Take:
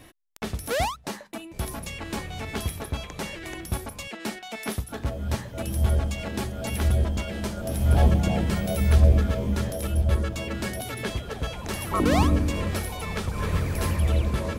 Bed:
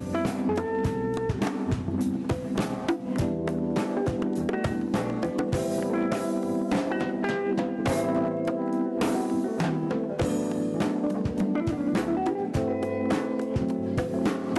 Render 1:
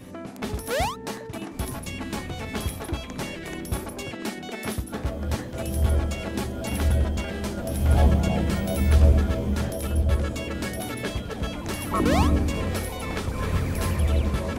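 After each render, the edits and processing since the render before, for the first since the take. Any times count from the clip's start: add bed -10.5 dB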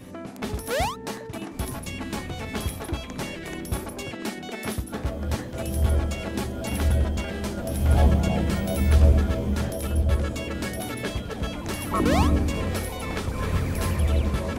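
no audible change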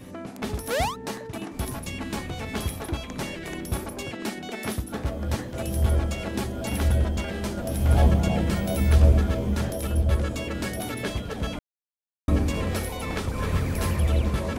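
11.59–12.28 s: mute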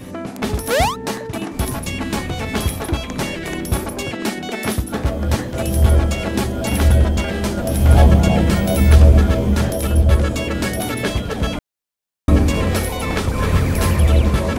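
trim +9 dB; peak limiter -1 dBFS, peak gain reduction 3 dB

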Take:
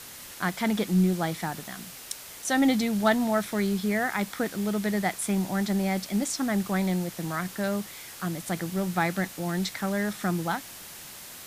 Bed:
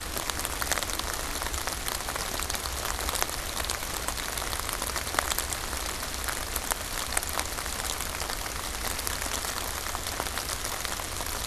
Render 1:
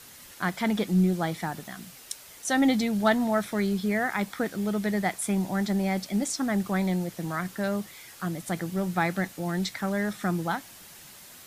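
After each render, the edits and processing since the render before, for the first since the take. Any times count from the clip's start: noise reduction 6 dB, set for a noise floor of -44 dBFS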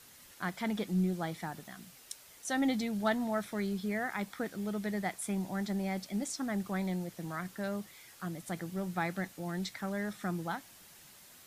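trim -8 dB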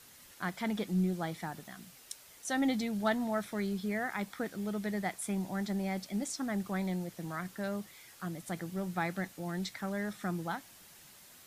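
no audible change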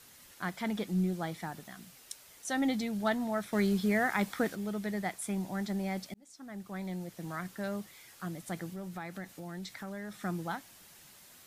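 3.53–4.55 s: gain +6 dB; 6.14–7.31 s: fade in; 8.69–10.17 s: compression 2.5:1, threshold -40 dBFS

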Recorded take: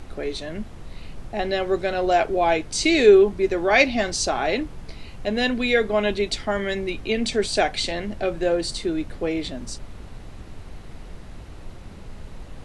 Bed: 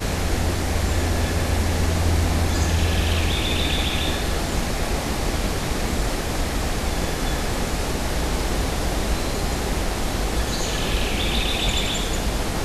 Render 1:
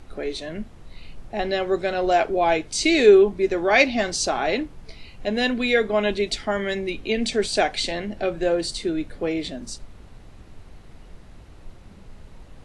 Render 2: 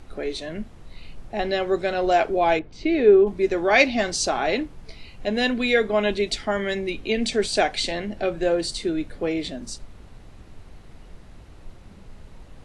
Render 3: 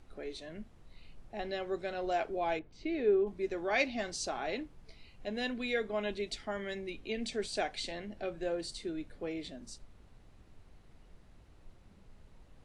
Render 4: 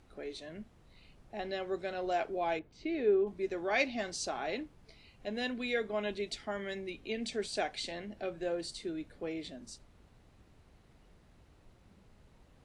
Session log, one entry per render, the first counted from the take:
noise print and reduce 6 dB
2.59–3.27 s: tape spacing loss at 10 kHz 41 dB
trim -13.5 dB
high-pass 52 Hz 6 dB/octave

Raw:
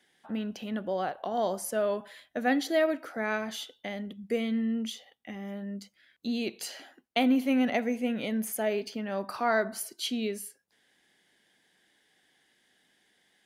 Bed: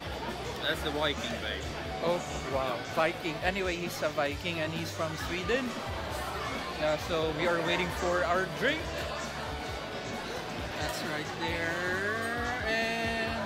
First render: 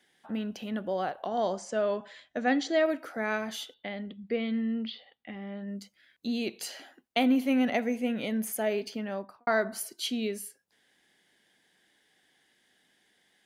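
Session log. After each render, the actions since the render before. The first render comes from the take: 1.26–2.86 s: steep low-pass 7.8 kHz 48 dB/octave; 3.74–5.68 s: elliptic low-pass 4.5 kHz; 9.02–9.47 s: studio fade out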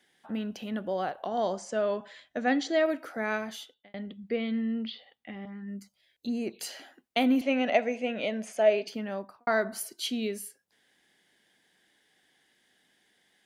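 3.36–3.94 s: fade out; 5.45–6.61 s: touch-sensitive phaser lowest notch 180 Hz, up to 3.6 kHz, full sweep at -28 dBFS; 7.41–8.88 s: cabinet simulation 200–7200 Hz, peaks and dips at 240 Hz -4 dB, 620 Hz +10 dB, 2.6 kHz +6 dB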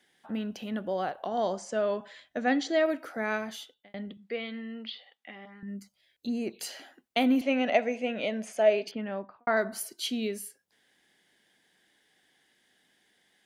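4.17–5.63 s: frequency weighting A; 8.91–9.57 s: low-pass 3.4 kHz 24 dB/octave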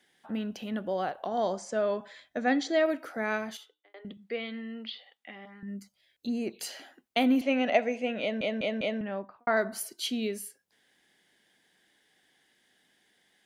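1.25–2.74 s: band-stop 2.9 kHz, Q 10; 3.57–4.05 s: rippled Chebyshev high-pass 300 Hz, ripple 9 dB; 8.21 s: stutter in place 0.20 s, 4 plays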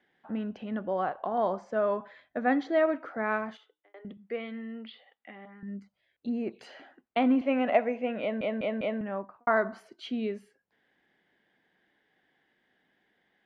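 low-pass 2 kHz 12 dB/octave; dynamic bell 1.1 kHz, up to +7 dB, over -48 dBFS, Q 2.4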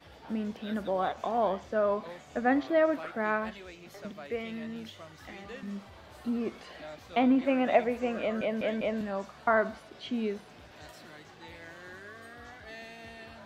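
add bed -15.5 dB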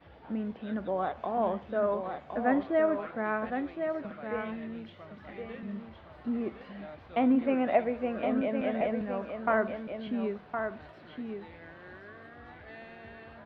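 distance through air 390 m; delay 1064 ms -6.5 dB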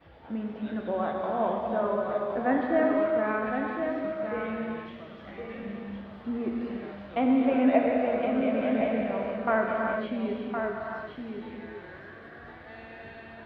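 gated-style reverb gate 460 ms flat, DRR -0.5 dB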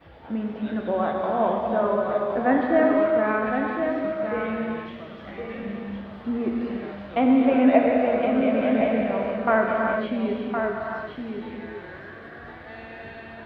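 trim +5 dB

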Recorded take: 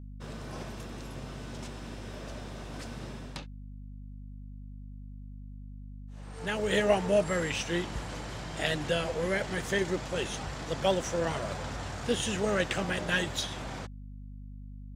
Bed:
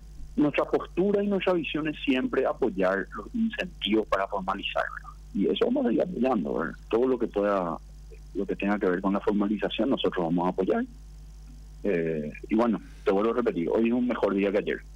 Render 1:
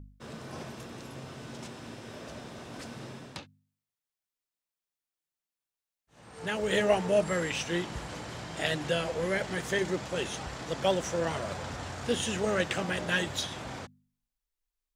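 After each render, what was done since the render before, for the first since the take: de-hum 50 Hz, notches 5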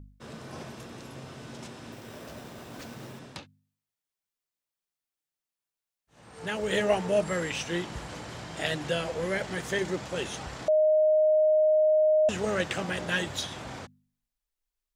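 1.92–3.19 s: careless resampling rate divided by 4×, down none, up hold; 10.68–12.29 s: bleep 619 Hz -18.5 dBFS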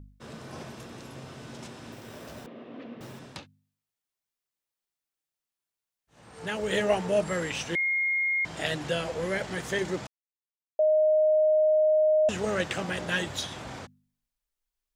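2.46–3.01 s: cabinet simulation 240–2800 Hz, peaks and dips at 250 Hz +9 dB, 490 Hz +4 dB, 870 Hz -8 dB, 1.5 kHz -9 dB, 2.3 kHz -4 dB; 7.75–8.45 s: bleep 2.14 kHz -23.5 dBFS; 10.07–10.79 s: mute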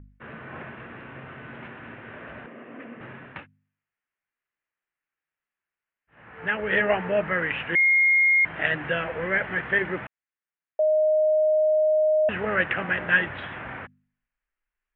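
steep low-pass 2.9 kHz 48 dB/octave; peaking EQ 1.7 kHz +11 dB 1.1 oct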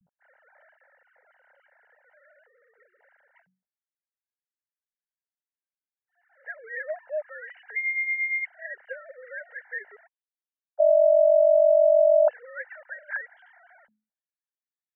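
formants replaced by sine waves; static phaser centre 1.7 kHz, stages 8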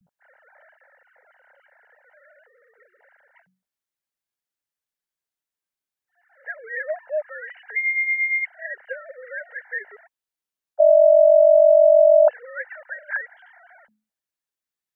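trim +5 dB

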